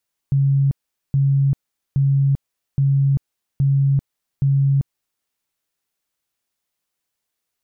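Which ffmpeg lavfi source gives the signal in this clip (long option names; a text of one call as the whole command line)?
ffmpeg -f lavfi -i "aevalsrc='0.224*sin(2*PI*138*mod(t,0.82))*lt(mod(t,0.82),54/138)':duration=4.92:sample_rate=44100" out.wav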